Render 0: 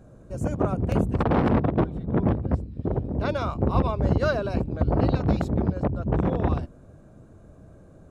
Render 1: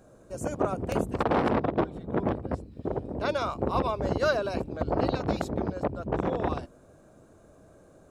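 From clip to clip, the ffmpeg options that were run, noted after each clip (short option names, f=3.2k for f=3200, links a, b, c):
-af "bass=f=250:g=-11,treble=f=4k:g=5"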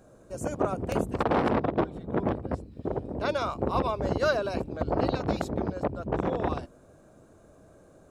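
-af anull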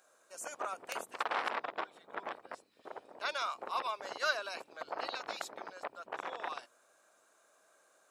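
-af "highpass=1.3k"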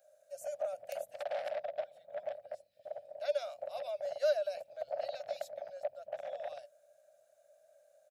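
-af "firequalizer=gain_entry='entry(120,0);entry(260,-22);entry(410,-25);entry(580,12);entry(1000,-28);entry(1600,-13);entry(4900,-9);entry(8000,-11);entry(13000,-2)':delay=0.05:min_phase=1,volume=1.5dB"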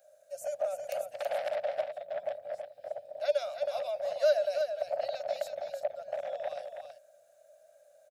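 -af "aecho=1:1:326:0.473,volume=4.5dB"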